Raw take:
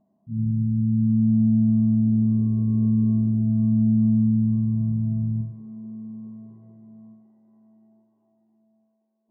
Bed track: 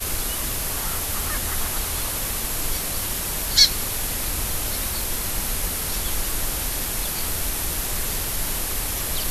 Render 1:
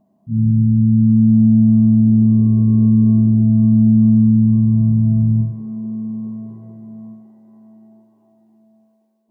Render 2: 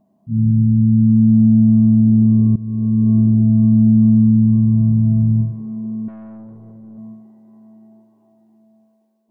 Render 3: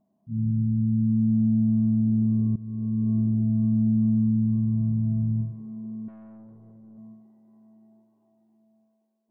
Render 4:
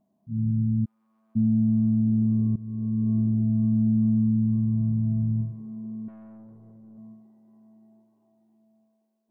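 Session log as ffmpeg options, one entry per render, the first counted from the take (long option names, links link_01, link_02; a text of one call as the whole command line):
ffmpeg -i in.wav -filter_complex "[0:a]asplit=2[link_01][link_02];[link_02]alimiter=limit=-21dB:level=0:latency=1:release=15,volume=2dB[link_03];[link_01][link_03]amix=inputs=2:normalize=0,dynaudnorm=framelen=130:gausssize=5:maxgain=4.5dB" out.wav
ffmpeg -i in.wav -filter_complex "[0:a]asettb=1/sr,asplit=3[link_01][link_02][link_03];[link_01]atrim=end=6.084[link_04];[link_02]atrim=start=6.08:end=6.98,asetpts=PTS-STARTPTS,afade=type=in:duration=0.004:curve=qsin,afade=type=out:start_time=0.896:duration=0.004:curve=qsin,aeval=exprs='(tanh(50.1*val(0)+0.15)-tanh(0.15))/50.1':channel_layout=same[link_05];[link_03]atrim=start=6.976[link_06];[link_04][link_05]acrossfade=duration=0.004:curve1=hsin:curve2=qsin[link_07];[link_07][link_06]acrossfade=duration=0.004:curve1=qsin:curve2=hsin,asplit=2[link_08][link_09];[link_08]atrim=end=2.56,asetpts=PTS-STARTPTS,afade=type=out:start_time=2.556:duration=0.004:curve=hsin:silence=0.11885[link_10];[link_09]atrim=start=2.56,asetpts=PTS-STARTPTS,afade=type=in:duration=0.63:silence=0.11885[link_11];[link_10][link_11]concat=n=2:v=0:a=1" out.wav
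ffmpeg -i in.wav -af "volume=-10.5dB" out.wav
ffmpeg -i in.wav -filter_complex "[0:a]asplit=3[link_01][link_02][link_03];[link_01]afade=type=out:start_time=0.84:duration=0.02[link_04];[link_02]highpass=frequency=820:width=0.5412,highpass=frequency=820:width=1.3066,afade=type=in:start_time=0.84:duration=0.02,afade=type=out:start_time=1.35:duration=0.02[link_05];[link_03]afade=type=in:start_time=1.35:duration=0.02[link_06];[link_04][link_05][link_06]amix=inputs=3:normalize=0" out.wav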